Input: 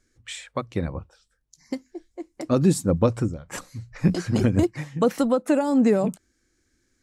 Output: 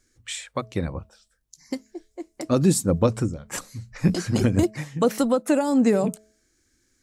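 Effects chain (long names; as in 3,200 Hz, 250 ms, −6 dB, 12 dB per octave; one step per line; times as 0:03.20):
high-shelf EQ 4,300 Hz +7 dB
hum removal 215.2 Hz, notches 3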